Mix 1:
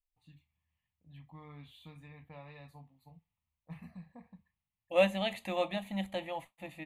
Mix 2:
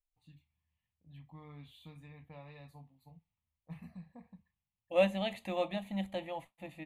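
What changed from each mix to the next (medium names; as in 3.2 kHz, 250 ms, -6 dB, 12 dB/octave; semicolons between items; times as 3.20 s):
second voice: add treble shelf 4.2 kHz -5.5 dB; master: add peaking EQ 1.5 kHz -3.5 dB 2 oct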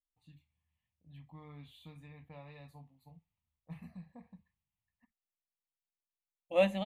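second voice: entry +1.60 s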